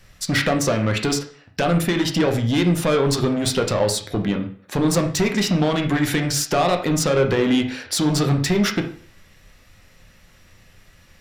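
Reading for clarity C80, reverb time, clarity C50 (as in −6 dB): 13.5 dB, 0.50 s, 9.5 dB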